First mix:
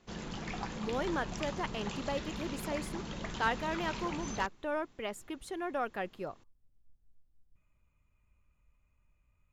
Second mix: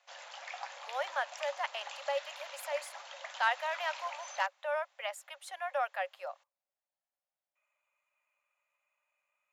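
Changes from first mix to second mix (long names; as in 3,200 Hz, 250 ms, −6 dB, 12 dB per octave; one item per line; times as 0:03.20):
speech +3.5 dB
master: add Chebyshev high-pass with heavy ripple 540 Hz, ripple 3 dB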